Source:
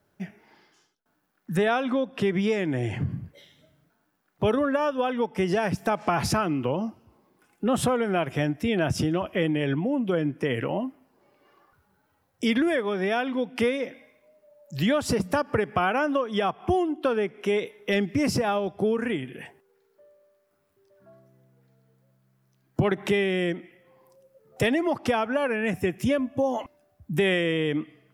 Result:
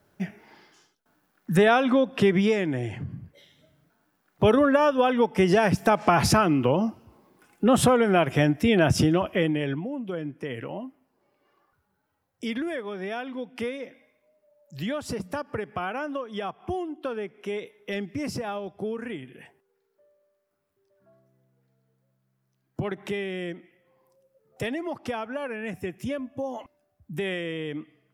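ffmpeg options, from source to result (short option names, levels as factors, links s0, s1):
-af "volume=6.31,afade=t=out:st=2.25:d=0.78:silence=0.266073,afade=t=in:st=3.03:d=1.58:silence=0.266073,afade=t=out:st=9.03:d=0.87:silence=0.266073"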